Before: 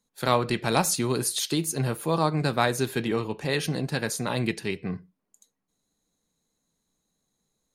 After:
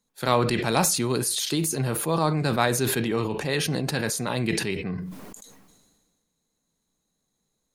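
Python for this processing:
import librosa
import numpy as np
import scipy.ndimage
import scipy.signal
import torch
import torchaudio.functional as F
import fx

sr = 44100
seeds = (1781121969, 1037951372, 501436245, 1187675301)

y = fx.sustainer(x, sr, db_per_s=36.0)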